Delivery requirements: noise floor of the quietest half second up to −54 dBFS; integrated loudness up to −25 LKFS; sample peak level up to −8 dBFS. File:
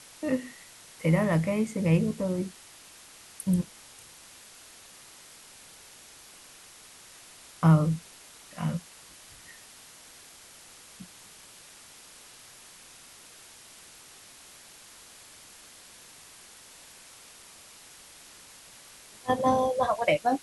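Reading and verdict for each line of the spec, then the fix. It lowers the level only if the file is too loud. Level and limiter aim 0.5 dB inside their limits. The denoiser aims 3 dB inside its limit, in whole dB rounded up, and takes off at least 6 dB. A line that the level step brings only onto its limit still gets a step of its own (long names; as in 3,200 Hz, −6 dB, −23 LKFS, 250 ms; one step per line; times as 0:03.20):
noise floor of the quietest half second −51 dBFS: out of spec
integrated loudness −27.0 LKFS: in spec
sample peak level −10.0 dBFS: in spec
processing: broadband denoise 6 dB, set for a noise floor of −51 dBFS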